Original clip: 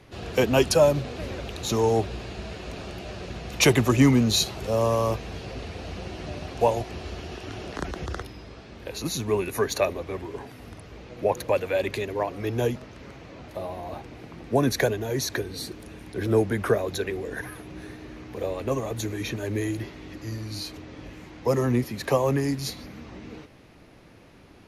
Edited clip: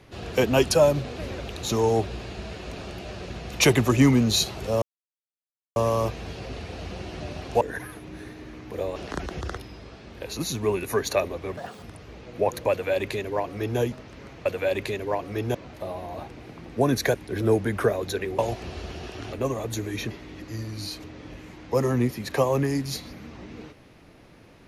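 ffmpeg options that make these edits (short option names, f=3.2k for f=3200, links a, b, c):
-filter_complex "[0:a]asplit=12[a][b][c][d][e][f][g][h][i][j][k][l];[a]atrim=end=4.82,asetpts=PTS-STARTPTS,afade=t=out:st=4.816:d=0.004:c=hsin,apad=pad_dur=0.94[m];[b]atrim=start=4.82:end=6.672,asetpts=PTS-STARTPTS,afade=t=in:d=0.004:c=hsin[n];[c]atrim=start=17.238:end=18.592[o];[d]atrim=start=7.608:end=10.224[p];[e]atrim=start=10.22:end=10.66,asetpts=PTS-STARTPTS,asetrate=75852,aresample=44100,atrim=end_sample=11281,asetpts=PTS-STARTPTS[q];[f]atrim=start=10.656:end=13.292[r];[g]atrim=start=11.538:end=12.632[s];[h]atrim=start=13.288:end=14.892[t];[i]atrim=start=15.998:end=17.242[u];[j]atrim=start=6.668:end=7.612[v];[k]atrim=start=18.588:end=19.372[w];[l]atrim=start=19.838[x];[m][n]concat=n=2:v=0:a=1[y];[y][o]acrossfade=d=0.004:c1=hsin:c2=hsin[z];[z][p]acrossfade=d=0.004:c1=hsin:c2=hsin[aa];[aa][q]acrossfade=d=0.004:c1=hsin:c2=hsin[ab];[ab][r]acrossfade=d=0.004:c1=hsin:c2=hsin[ac];[ac][s]acrossfade=d=0.004:c1=hsin:c2=hsin[ad];[ad][t]acrossfade=d=0.004:c1=hsin:c2=hsin[ae];[ae][u]acrossfade=d=0.004:c1=hsin:c2=hsin[af];[af][v]acrossfade=d=0.004:c1=hsin:c2=hsin[ag];[ag][w]acrossfade=d=0.004:c1=hsin:c2=hsin[ah];[ah][x]acrossfade=d=0.004:c1=hsin:c2=hsin"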